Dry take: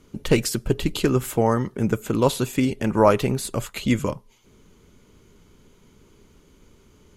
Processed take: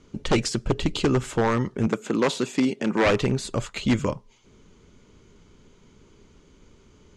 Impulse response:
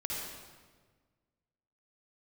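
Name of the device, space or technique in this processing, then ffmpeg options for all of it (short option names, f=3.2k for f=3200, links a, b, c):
synthesiser wavefolder: -filter_complex "[0:a]aeval=exprs='0.224*(abs(mod(val(0)/0.224+3,4)-2)-1)':c=same,lowpass=f=7.5k:w=0.5412,lowpass=f=7.5k:w=1.3066,asettb=1/sr,asplit=3[a][b][c];[a]atrim=end=1.874[d];[b]atrim=start=1.87:end=3.06,asetpts=PTS-STARTPTS,afade=t=in:d=0.004:c=qsin,afade=t=out:st=1.186:d=0.004:c=qsin,highpass=f=170:w=0.5412,highpass=f=170:w=1.3066[e];[c]atrim=start=3.056[f];[d][e]acrossfade=d=0.004:c1=hsin:c2=qsin[g];[g][f]acrossfade=d=0.004:c1=qsin:c2=hsin"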